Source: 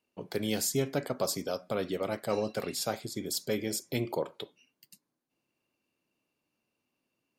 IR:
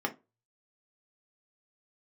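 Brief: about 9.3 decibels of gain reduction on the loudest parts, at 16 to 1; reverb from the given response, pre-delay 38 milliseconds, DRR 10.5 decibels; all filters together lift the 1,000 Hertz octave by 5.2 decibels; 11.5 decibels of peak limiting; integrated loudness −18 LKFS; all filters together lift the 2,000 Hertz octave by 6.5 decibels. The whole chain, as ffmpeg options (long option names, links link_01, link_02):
-filter_complex "[0:a]equalizer=frequency=1000:width_type=o:gain=5.5,equalizer=frequency=2000:width_type=o:gain=6.5,acompressor=threshold=-32dB:ratio=16,alimiter=level_in=8dB:limit=-24dB:level=0:latency=1,volume=-8dB,asplit=2[link_01][link_02];[1:a]atrim=start_sample=2205,adelay=38[link_03];[link_02][link_03]afir=irnorm=-1:irlink=0,volume=-17dB[link_04];[link_01][link_04]amix=inputs=2:normalize=0,volume=24.5dB"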